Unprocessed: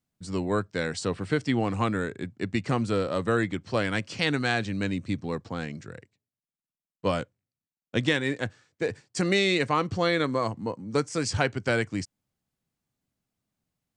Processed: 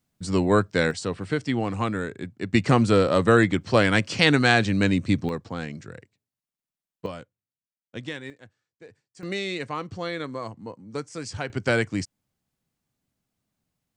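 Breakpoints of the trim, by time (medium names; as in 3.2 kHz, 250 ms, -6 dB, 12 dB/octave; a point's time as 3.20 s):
+7 dB
from 0.91 s 0 dB
from 2.53 s +7.5 dB
from 5.29 s +1 dB
from 7.06 s -10 dB
from 8.30 s -19 dB
from 9.23 s -6.5 dB
from 11.50 s +3 dB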